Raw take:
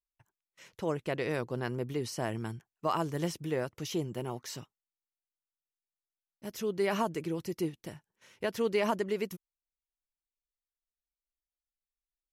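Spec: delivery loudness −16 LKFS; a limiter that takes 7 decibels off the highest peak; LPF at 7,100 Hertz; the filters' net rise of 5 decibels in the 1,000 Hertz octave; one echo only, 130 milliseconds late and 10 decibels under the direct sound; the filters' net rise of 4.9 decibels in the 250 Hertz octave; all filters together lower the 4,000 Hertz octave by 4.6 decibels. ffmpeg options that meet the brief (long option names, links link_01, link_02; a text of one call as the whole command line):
ffmpeg -i in.wav -af "lowpass=7100,equalizer=frequency=250:width_type=o:gain=6.5,equalizer=frequency=1000:width_type=o:gain=6,equalizer=frequency=4000:width_type=o:gain=-7,alimiter=limit=-21.5dB:level=0:latency=1,aecho=1:1:130:0.316,volume=17dB" out.wav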